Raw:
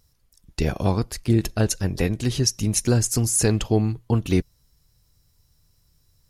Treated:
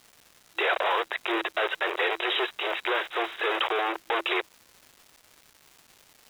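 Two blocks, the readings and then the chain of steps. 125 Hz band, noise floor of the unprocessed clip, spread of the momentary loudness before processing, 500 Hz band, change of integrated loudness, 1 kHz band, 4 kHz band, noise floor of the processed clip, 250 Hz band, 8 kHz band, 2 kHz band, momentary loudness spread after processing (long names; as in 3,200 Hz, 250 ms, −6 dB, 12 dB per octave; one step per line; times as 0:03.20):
below −40 dB, −64 dBFS, 5 LU, −3.0 dB, −5.0 dB, +7.5 dB, +1.5 dB, −60 dBFS, −14.5 dB, below −25 dB, +9.5 dB, 4 LU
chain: three-way crossover with the lows and the highs turned down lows −16 dB, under 470 Hz, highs −14 dB, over 2,200 Hz
fuzz pedal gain 42 dB, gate −45 dBFS
tilt shelving filter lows −6 dB, about 640 Hz
brickwall limiter −15 dBFS, peak gain reduction 11 dB
brick-wall band-pass 330–3,900 Hz
surface crackle 590 per second −42 dBFS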